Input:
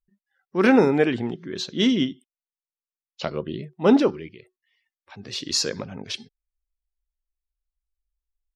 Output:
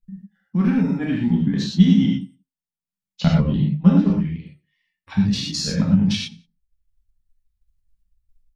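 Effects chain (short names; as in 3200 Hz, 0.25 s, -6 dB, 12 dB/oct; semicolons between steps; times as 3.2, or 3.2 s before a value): flange 0.99 Hz, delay 9.4 ms, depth 5.1 ms, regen +33%; reverse; compressor 10:1, threshold -32 dBFS, peak gain reduction 17 dB; reverse; transient shaper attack +12 dB, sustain -5 dB; resonant low shelf 280 Hz +13 dB, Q 3; on a send: feedback echo 88 ms, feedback 34%, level -23.5 dB; on the sum: non-linear reverb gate 0.14 s flat, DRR -3.5 dB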